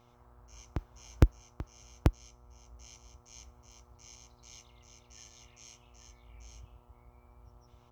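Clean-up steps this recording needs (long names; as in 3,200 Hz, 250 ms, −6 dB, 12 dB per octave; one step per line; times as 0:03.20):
clipped peaks rebuilt −10.5 dBFS
hum removal 120.6 Hz, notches 11
echo removal 837 ms −5 dB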